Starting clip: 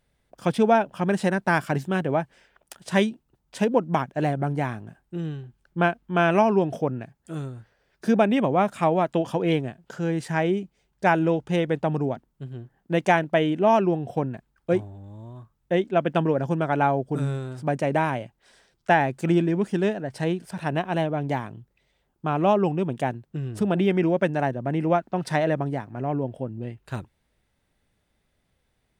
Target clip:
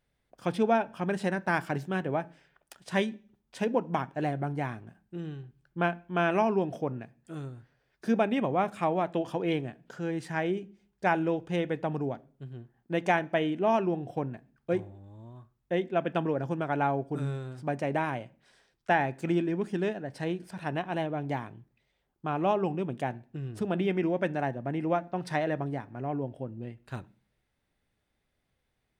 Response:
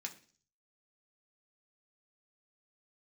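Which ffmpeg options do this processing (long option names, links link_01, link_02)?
-filter_complex "[0:a]asplit=2[link_01][link_02];[1:a]atrim=start_sample=2205,lowpass=5700[link_03];[link_02][link_03]afir=irnorm=-1:irlink=0,volume=-5.5dB[link_04];[link_01][link_04]amix=inputs=2:normalize=0,volume=-8dB"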